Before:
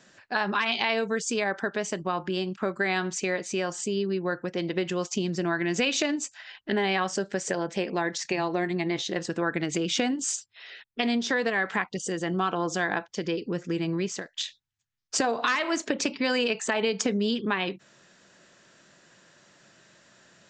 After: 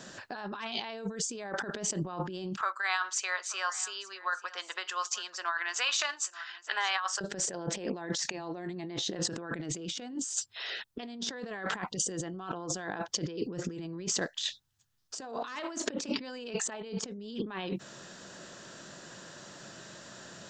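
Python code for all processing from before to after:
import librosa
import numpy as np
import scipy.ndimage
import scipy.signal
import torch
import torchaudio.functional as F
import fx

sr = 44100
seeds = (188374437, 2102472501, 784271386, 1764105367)

y = fx.chain(x, sr, fx.ladder_highpass(hz=1000.0, resonance_pct=50),
    fx.echo_single(ms=883, db=-19.0), at=(2.61, 7.21))
y = fx.peak_eq(y, sr, hz=2200.0, db=-7.5, octaves=0.64)
y = fx.over_compress(y, sr, threshold_db=-39.0, ratio=-1.0)
y = y * librosa.db_to_amplitude(2.5)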